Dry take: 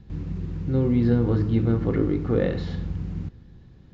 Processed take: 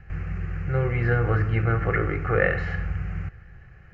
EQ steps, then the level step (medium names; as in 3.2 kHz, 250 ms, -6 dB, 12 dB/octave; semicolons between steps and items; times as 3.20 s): bass shelf 240 Hz +3.5 dB; high-order bell 1.6 kHz +15.5 dB 2.4 oct; static phaser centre 960 Hz, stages 6; 0.0 dB